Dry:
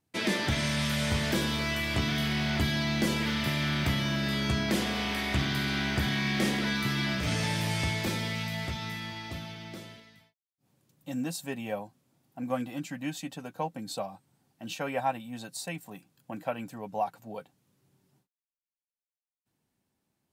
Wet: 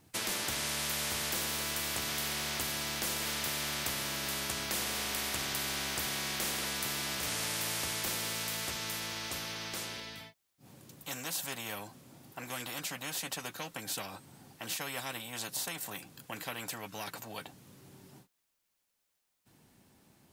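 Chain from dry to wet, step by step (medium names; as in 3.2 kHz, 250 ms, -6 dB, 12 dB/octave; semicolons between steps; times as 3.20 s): spectrum-flattening compressor 4:1; trim -1 dB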